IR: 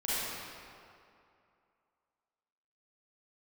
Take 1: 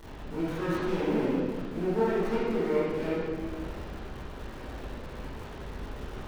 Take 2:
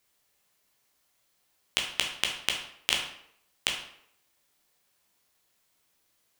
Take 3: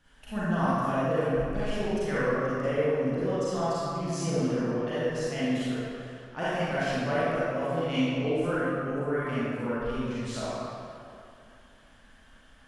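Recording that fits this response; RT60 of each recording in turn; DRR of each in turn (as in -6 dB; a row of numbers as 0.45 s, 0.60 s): 3; 1.7 s, 0.70 s, 2.5 s; -9.5 dB, 0.0 dB, -11.5 dB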